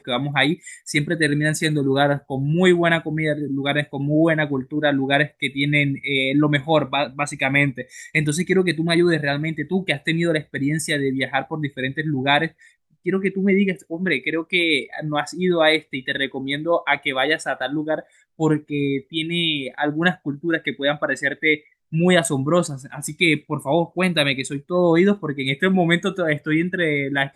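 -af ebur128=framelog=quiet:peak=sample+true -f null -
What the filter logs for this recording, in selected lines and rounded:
Integrated loudness:
  I:         -20.7 LUFS
  Threshold: -30.7 LUFS
Loudness range:
  LRA:         2.8 LU
  Threshold: -40.8 LUFS
  LRA low:   -22.5 LUFS
  LRA high:  -19.7 LUFS
Sample peak:
  Peak:       -2.8 dBFS
True peak:
  Peak:       -2.7 dBFS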